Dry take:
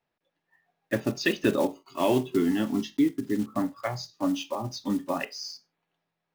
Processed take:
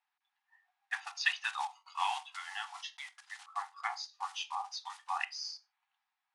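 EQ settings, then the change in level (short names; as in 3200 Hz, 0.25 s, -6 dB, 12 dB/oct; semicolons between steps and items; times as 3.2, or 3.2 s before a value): brick-wall FIR high-pass 720 Hz; elliptic low-pass 10000 Hz, stop band 60 dB; high shelf 7200 Hz -10.5 dB; 0.0 dB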